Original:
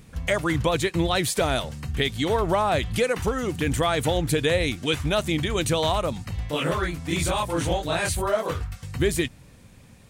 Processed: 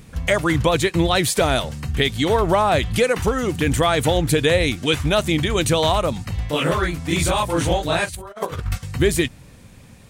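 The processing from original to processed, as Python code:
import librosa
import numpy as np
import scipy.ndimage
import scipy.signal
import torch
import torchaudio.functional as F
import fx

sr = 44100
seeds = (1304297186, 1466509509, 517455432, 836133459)

y = fx.over_compress(x, sr, threshold_db=-33.0, ratio=-0.5, at=(8.04, 8.77), fade=0.02)
y = y * 10.0 ** (5.0 / 20.0)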